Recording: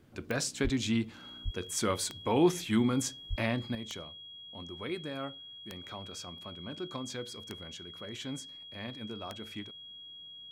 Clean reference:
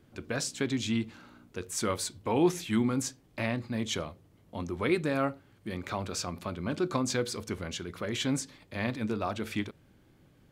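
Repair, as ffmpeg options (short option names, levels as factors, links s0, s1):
-filter_complex "[0:a]adeclick=t=4,bandreject=f=3300:w=30,asplit=3[s0][s1][s2];[s0]afade=t=out:st=0.63:d=0.02[s3];[s1]highpass=f=140:w=0.5412,highpass=f=140:w=1.3066,afade=t=in:st=0.63:d=0.02,afade=t=out:st=0.75:d=0.02[s4];[s2]afade=t=in:st=0.75:d=0.02[s5];[s3][s4][s5]amix=inputs=3:normalize=0,asplit=3[s6][s7][s8];[s6]afade=t=out:st=1.44:d=0.02[s9];[s7]highpass=f=140:w=0.5412,highpass=f=140:w=1.3066,afade=t=in:st=1.44:d=0.02,afade=t=out:st=1.56:d=0.02[s10];[s8]afade=t=in:st=1.56:d=0.02[s11];[s9][s10][s11]amix=inputs=3:normalize=0,asplit=3[s12][s13][s14];[s12]afade=t=out:st=3.29:d=0.02[s15];[s13]highpass=f=140:w=0.5412,highpass=f=140:w=1.3066,afade=t=in:st=3.29:d=0.02,afade=t=out:st=3.41:d=0.02[s16];[s14]afade=t=in:st=3.41:d=0.02[s17];[s15][s16][s17]amix=inputs=3:normalize=0,asetnsamples=n=441:p=0,asendcmd='3.75 volume volume 10dB',volume=1"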